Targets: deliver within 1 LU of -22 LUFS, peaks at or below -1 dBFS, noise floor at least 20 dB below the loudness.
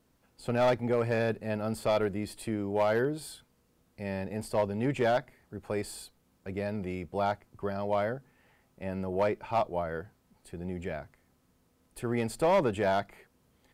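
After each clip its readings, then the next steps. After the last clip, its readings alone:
clipped samples 0.6%; clipping level -19.5 dBFS; loudness -31.5 LUFS; peak level -19.5 dBFS; loudness target -22.0 LUFS
-> clip repair -19.5 dBFS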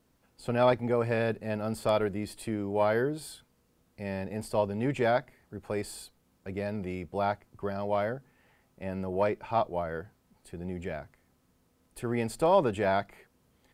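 clipped samples 0.0%; loudness -30.5 LUFS; peak level -11.0 dBFS; loudness target -22.0 LUFS
-> trim +8.5 dB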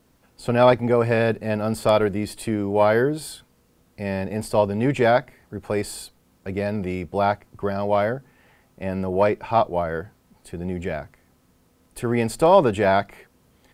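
loudness -22.0 LUFS; peak level -2.5 dBFS; noise floor -61 dBFS

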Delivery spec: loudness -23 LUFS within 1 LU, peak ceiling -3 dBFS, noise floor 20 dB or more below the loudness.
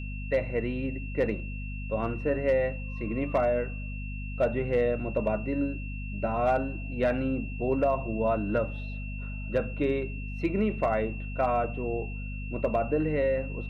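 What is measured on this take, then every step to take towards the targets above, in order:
hum 50 Hz; highest harmonic 250 Hz; hum level -33 dBFS; steady tone 2.7 kHz; tone level -43 dBFS; loudness -29.5 LUFS; peak level -15.5 dBFS; loudness target -23.0 LUFS
-> hum notches 50/100/150/200/250 Hz; band-stop 2.7 kHz, Q 30; trim +6.5 dB

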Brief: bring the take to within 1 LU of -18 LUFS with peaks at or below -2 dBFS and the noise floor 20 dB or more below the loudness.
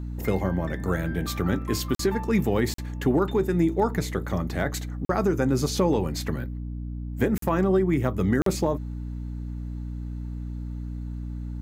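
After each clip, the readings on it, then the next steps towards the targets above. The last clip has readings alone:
dropouts 5; longest dropout 43 ms; hum 60 Hz; highest harmonic 300 Hz; hum level -30 dBFS; loudness -26.5 LUFS; peak level -10.0 dBFS; loudness target -18.0 LUFS
-> interpolate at 1.95/2.74/5.05/7.38/8.42 s, 43 ms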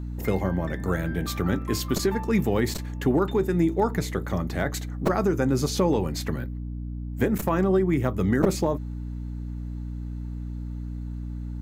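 dropouts 0; hum 60 Hz; highest harmonic 300 Hz; hum level -30 dBFS
-> hum notches 60/120/180/240/300 Hz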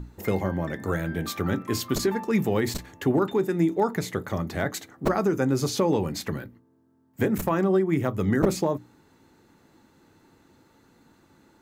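hum not found; loudness -26.0 LUFS; peak level -7.0 dBFS; loudness target -18.0 LUFS
-> trim +8 dB; peak limiter -2 dBFS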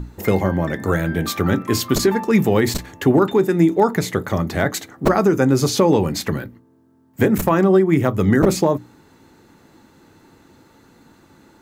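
loudness -18.0 LUFS; peak level -2.0 dBFS; noise floor -54 dBFS

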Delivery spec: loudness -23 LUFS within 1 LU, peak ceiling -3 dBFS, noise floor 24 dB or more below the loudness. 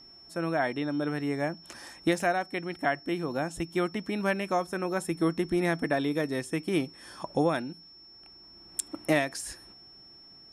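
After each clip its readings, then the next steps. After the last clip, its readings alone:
steady tone 5.4 kHz; tone level -50 dBFS; loudness -30.0 LUFS; peak level -12.5 dBFS; loudness target -23.0 LUFS
-> band-stop 5.4 kHz, Q 30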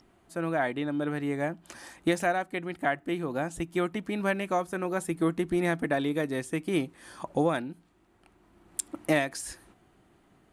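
steady tone not found; loudness -30.5 LUFS; peak level -12.0 dBFS; loudness target -23.0 LUFS
-> trim +7.5 dB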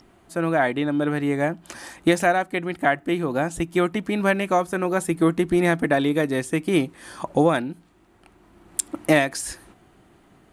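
loudness -23.0 LUFS; peak level -4.5 dBFS; noise floor -56 dBFS

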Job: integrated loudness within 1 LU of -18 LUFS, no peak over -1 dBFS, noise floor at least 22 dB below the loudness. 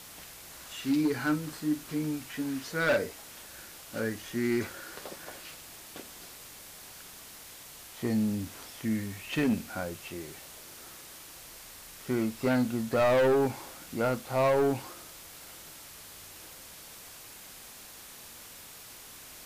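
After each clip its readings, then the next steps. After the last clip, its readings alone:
clipped samples 1.1%; clipping level -21.0 dBFS; noise floor -49 dBFS; noise floor target -53 dBFS; loudness -30.5 LUFS; peak level -21.0 dBFS; loudness target -18.0 LUFS
-> clip repair -21 dBFS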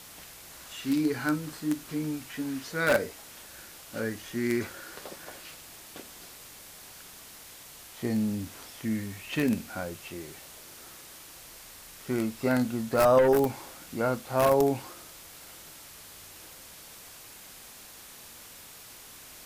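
clipped samples 0.0%; noise floor -49 dBFS; noise floor target -51 dBFS
-> noise reduction 6 dB, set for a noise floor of -49 dBFS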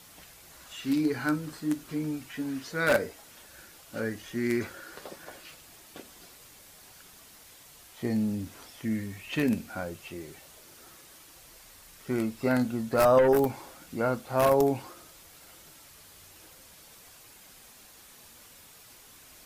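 noise floor -53 dBFS; loudness -28.5 LUFS; peak level -12.0 dBFS; loudness target -18.0 LUFS
-> trim +10.5 dB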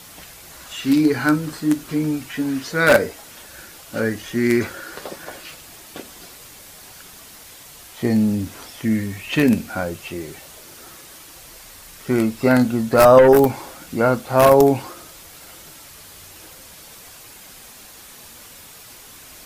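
loudness -18.0 LUFS; peak level -1.5 dBFS; noise floor -43 dBFS

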